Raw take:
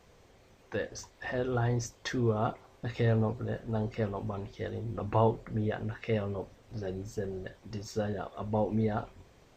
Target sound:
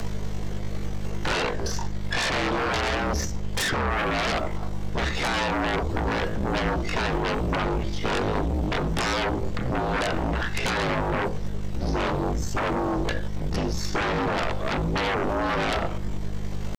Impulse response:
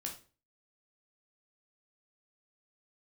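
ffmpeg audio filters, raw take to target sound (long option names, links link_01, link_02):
-filter_complex "[0:a]bandreject=frequency=2500:width=21,asplit=2[link_01][link_02];[link_02]highshelf=frequency=3700:gain=-6.5[link_03];[1:a]atrim=start_sample=2205[link_04];[link_03][link_04]afir=irnorm=-1:irlink=0,volume=-17.5dB[link_05];[link_01][link_05]amix=inputs=2:normalize=0,acompressor=mode=upward:threshold=-50dB:ratio=2.5,atempo=0.57,aeval=exprs='val(0)+0.00794*(sin(2*PI*50*n/s)+sin(2*PI*2*50*n/s)/2+sin(2*PI*3*50*n/s)/3+sin(2*PI*4*50*n/s)/4+sin(2*PI*5*50*n/s)/5)':channel_layout=same,acrossover=split=230|3800[link_06][link_07][link_08];[link_06]acompressor=threshold=-40dB:ratio=4[link_09];[link_07]acompressor=threshold=-32dB:ratio=4[link_10];[link_08]acompressor=threshold=-58dB:ratio=4[link_11];[link_09][link_10][link_11]amix=inputs=3:normalize=0,aeval=exprs='0.126*sin(PI/2*10*val(0)/0.126)':channel_layout=same,afreqshift=-45,aeval=exprs='0.422*(cos(1*acos(clip(val(0)/0.422,-1,1)))-cos(1*PI/2))+0.0596*(cos(3*acos(clip(val(0)/0.422,-1,1)))-cos(3*PI/2))':channel_layout=same"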